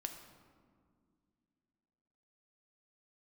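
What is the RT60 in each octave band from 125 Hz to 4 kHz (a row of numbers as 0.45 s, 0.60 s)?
2.9 s, 3.1 s, 2.4 s, 1.9 s, 1.4 s, 0.95 s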